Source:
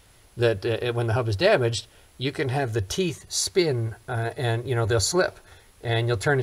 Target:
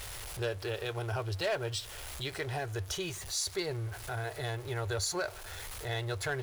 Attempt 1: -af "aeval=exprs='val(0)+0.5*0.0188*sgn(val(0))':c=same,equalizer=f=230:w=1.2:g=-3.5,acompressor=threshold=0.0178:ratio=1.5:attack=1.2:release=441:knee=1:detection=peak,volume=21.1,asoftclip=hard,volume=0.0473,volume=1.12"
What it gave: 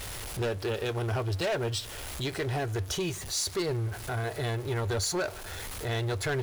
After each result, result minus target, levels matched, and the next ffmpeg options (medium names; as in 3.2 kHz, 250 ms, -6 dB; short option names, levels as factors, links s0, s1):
compression: peak gain reduction -3.5 dB; 250 Hz band +3.5 dB
-af "aeval=exprs='val(0)+0.5*0.0188*sgn(val(0))':c=same,equalizer=f=230:w=1.2:g=-3.5,acompressor=threshold=0.00473:ratio=1.5:attack=1.2:release=441:knee=1:detection=peak,volume=21.1,asoftclip=hard,volume=0.0473,volume=1.12"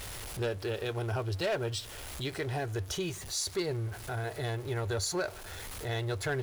250 Hz band +3.5 dB
-af "aeval=exprs='val(0)+0.5*0.0188*sgn(val(0))':c=same,equalizer=f=230:w=1.2:g=-14,acompressor=threshold=0.00473:ratio=1.5:attack=1.2:release=441:knee=1:detection=peak,volume=21.1,asoftclip=hard,volume=0.0473,volume=1.12"